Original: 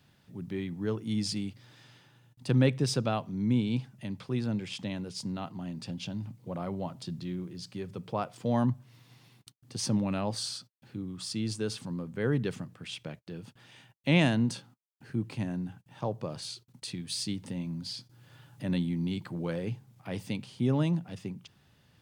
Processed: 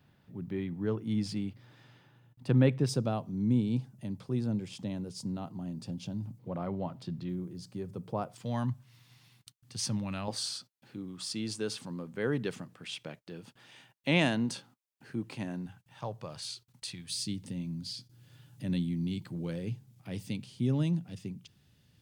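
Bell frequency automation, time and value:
bell -10 dB 2.4 oct
7300 Hz
from 2.89 s 2300 Hz
from 6.39 s 8800 Hz
from 7.29 s 2800 Hz
from 8.35 s 400 Hz
from 10.28 s 72 Hz
from 15.66 s 280 Hz
from 17.1 s 980 Hz

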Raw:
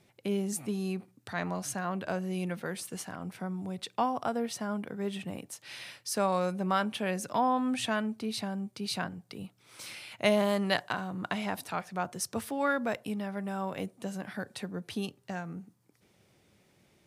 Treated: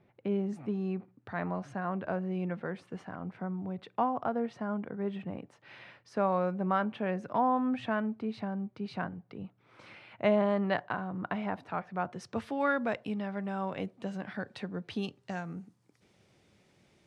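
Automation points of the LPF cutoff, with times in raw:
11.8 s 1700 Hz
12.5 s 3600 Hz
14.86 s 3600 Hz
15.45 s 7700 Hz

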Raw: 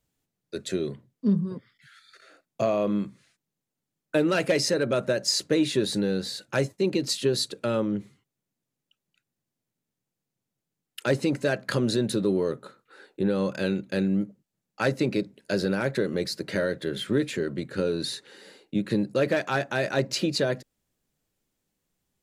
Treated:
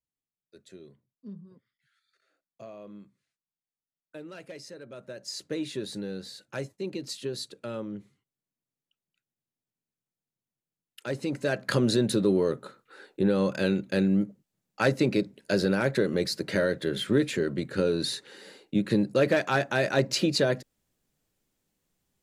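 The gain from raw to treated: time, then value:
4.89 s -20 dB
5.51 s -9.5 dB
11.03 s -9.5 dB
11.71 s +1 dB

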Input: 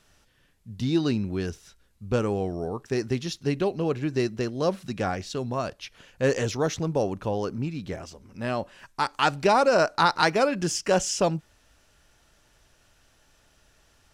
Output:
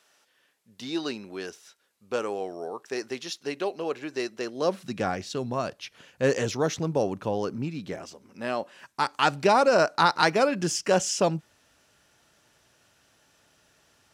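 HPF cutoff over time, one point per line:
4.37 s 450 Hz
5.02 s 120 Hz
7.45 s 120 Hz
8.62 s 280 Hz
9.03 s 120 Hz

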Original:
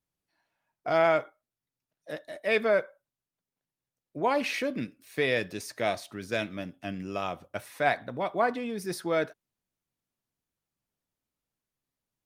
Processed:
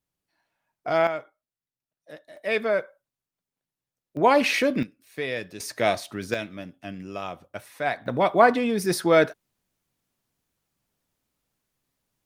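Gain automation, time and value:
+2 dB
from 1.07 s -6 dB
from 2.37 s +0.5 dB
from 4.17 s +8 dB
from 4.83 s -3 dB
from 5.6 s +6 dB
from 6.34 s -1 dB
from 8.06 s +9.5 dB

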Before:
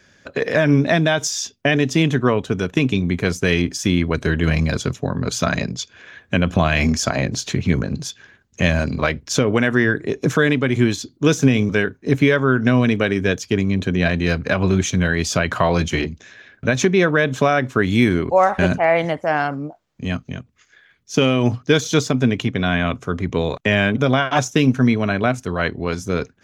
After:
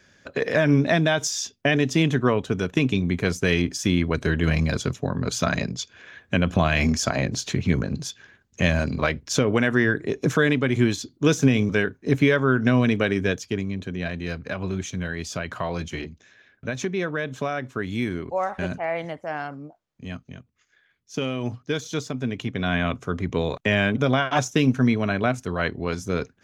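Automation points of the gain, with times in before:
13.2 s -3.5 dB
13.82 s -11 dB
22.21 s -11 dB
22.76 s -4 dB

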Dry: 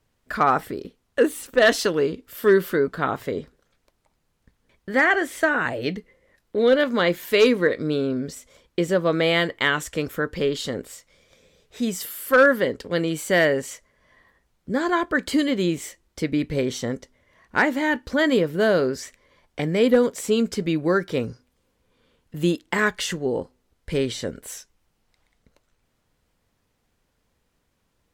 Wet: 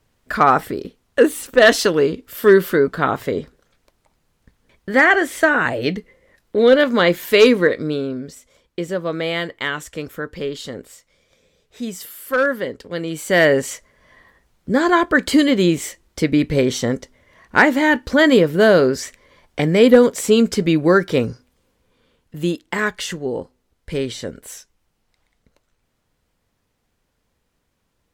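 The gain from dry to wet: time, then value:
7.58 s +5.5 dB
8.26 s -2.5 dB
13 s -2.5 dB
13.54 s +7 dB
21.18 s +7 dB
22.41 s +0.5 dB

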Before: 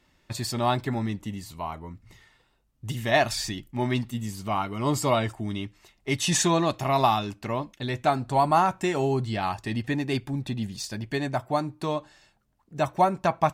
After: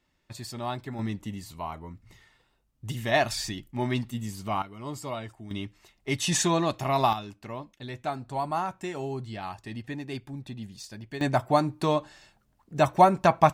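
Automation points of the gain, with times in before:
-8.5 dB
from 0.99 s -2 dB
from 4.62 s -11.5 dB
from 5.51 s -2 dB
from 7.13 s -8.5 dB
from 11.21 s +3.5 dB

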